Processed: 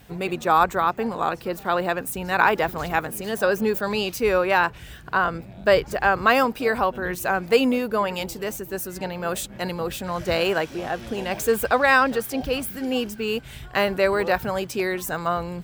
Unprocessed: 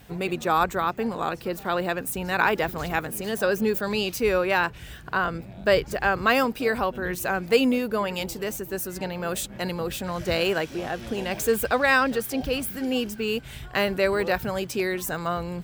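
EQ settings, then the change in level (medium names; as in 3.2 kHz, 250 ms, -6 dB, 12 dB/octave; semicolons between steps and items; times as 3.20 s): dynamic bell 920 Hz, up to +5 dB, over -34 dBFS, Q 0.84; 0.0 dB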